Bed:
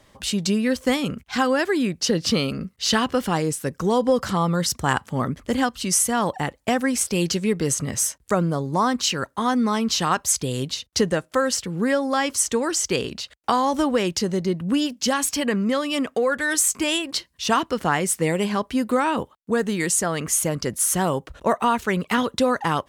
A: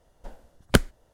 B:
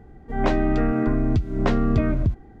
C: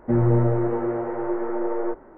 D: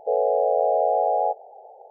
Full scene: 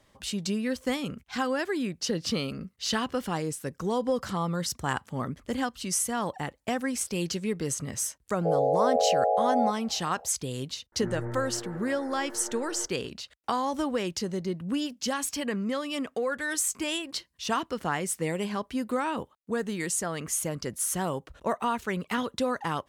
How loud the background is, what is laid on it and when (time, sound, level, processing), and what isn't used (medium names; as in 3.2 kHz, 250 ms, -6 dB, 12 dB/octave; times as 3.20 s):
bed -8 dB
8.38 s: add D -3.5 dB
10.92 s: add C -16.5 dB + peaking EQ 1.7 kHz +13 dB 0.68 oct
not used: A, B